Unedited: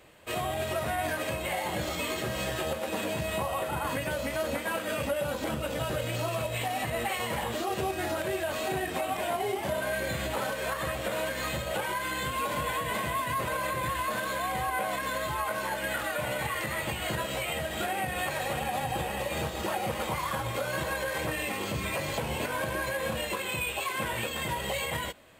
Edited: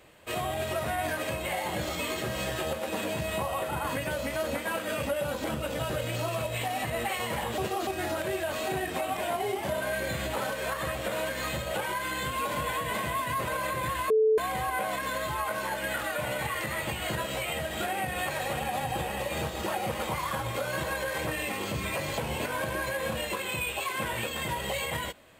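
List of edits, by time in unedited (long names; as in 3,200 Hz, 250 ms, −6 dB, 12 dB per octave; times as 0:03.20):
0:07.58–0:07.87: reverse
0:14.10–0:14.38: beep over 437 Hz −19 dBFS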